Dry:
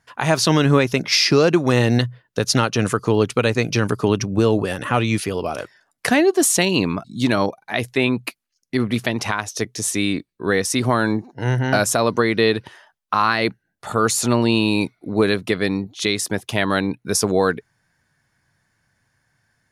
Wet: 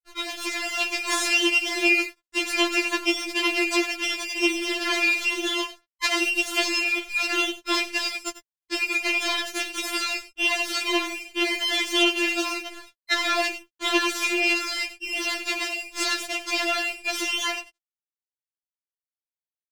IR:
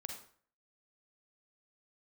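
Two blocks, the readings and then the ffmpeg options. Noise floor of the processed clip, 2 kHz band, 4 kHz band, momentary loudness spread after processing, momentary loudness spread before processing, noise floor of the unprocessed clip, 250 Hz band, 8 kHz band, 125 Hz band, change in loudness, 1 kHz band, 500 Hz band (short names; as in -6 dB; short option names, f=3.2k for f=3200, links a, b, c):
under -85 dBFS, +1.0 dB, +1.0 dB, 8 LU, 9 LU, -74 dBFS, -10.5 dB, -6.5 dB, under -40 dB, -4.0 dB, -7.0 dB, -12.0 dB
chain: -filter_complex "[0:a]afftfilt=real='real(if(lt(b,960),b+48*(1-2*mod(floor(b/48),2)),b),0)':imag='imag(if(lt(b,960),b+48*(1-2*mod(floor(b/48),2)),b),0)':win_size=2048:overlap=0.75,asplit=2[a][b];[b]highpass=f=720:p=1,volume=15dB,asoftclip=type=tanh:threshold=-2dB[c];[a][c]amix=inputs=2:normalize=0,lowpass=f=2.5k:p=1,volume=-6dB,acompressor=threshold=-26dB:ratio=6,bandreject=f=114.1:t=h:w=4,bandreject=f=228.2:t=h:w=4,bandreject=f=342.3:t=h:w=4,bandreject=f=456.4:t=h:w=4,bandreject=f=570.5:t=h:w=4,bandreject=f=684.6:t=h:w=4,bandreject=f=798.7:t=h:w=4,bandreject=f=912.8:t=h:w=4,bandreject=f=1.0269k:t=h:w=4,bandreject=f=1.141k:t=h:w=4,bandreject=f=1.2551k:t=h:w=4,bandreject=f=1.3692k:t=h:w=4,bandreject=f=1.4833k:t=h:w=4,bandreject=f=1.5974k:t=h:w=4,bandreject=f=1.7115k:t=h:w=4,asplit=2[d][e];[e]aecho=0:1:93:0.251[f];[d][f]amix=inputs=2:normalize=0,aeval=exprs='abs(val(0))':c=same,highpass=f=44:w=0.5412,highpass=f=44:w=1.3066,dynaudnorm=f=100:g=11:m=8dB,lowpass=7.3k,aeval=exprs='sgn(val(0))*max(abs(val(0))-0.00891,0)':c=same,afftfilt=real='re*4*eq(mod(b,16),0)':imag='im*4*eq(mod(b,16),0)':win_size=2048:overlap=0.75,volume=5dB"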